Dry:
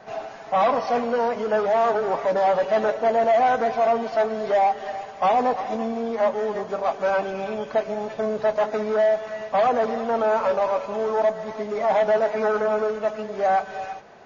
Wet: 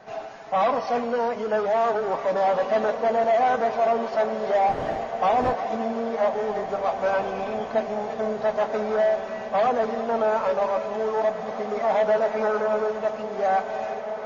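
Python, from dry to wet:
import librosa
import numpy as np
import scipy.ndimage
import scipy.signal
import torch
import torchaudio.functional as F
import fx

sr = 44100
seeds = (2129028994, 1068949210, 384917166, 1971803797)

y = fx.dmg_wind(x, sr, seeds[0], corner_hz=620.0, level_db=-24.0, at=(4.68, 5.52), fade=0.02)
y = fx.echo_diffused(y, sr, ms=1984, feedback_pct=54, wet_db=-9.5)
y = y * librosa.db_to_amplitude(-2.0)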